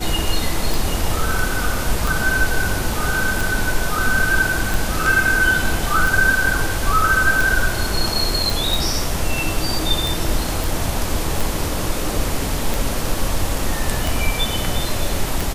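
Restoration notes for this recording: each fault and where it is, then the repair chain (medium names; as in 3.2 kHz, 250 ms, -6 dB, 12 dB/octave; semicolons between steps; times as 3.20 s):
tick 45 rpm
8.50 s: pop
10.64 s: pop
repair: de-click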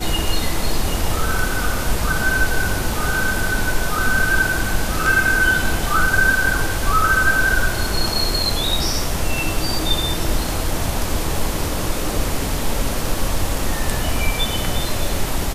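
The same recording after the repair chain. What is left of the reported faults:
nothing left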